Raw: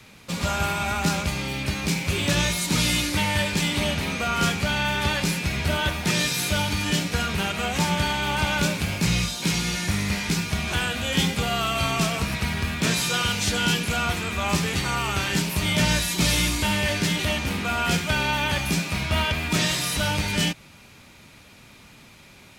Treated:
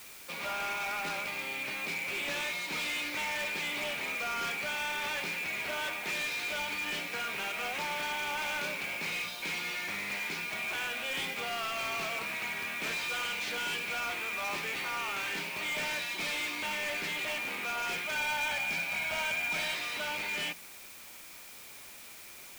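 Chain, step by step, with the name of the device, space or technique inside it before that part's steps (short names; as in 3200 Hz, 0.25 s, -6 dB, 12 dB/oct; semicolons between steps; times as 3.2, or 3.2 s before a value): drive-through speaker (BPF 440–3600 Hz; bell 2300 Hz +7.5 dB 0.31 oct; hard clip -24.5 dBFS, distortion -11 dB; white noise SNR 14 dB); notches 60/120/180 Hz; 18.15–19.74 comb 1.3 ms, depth 48%; gain -7 dB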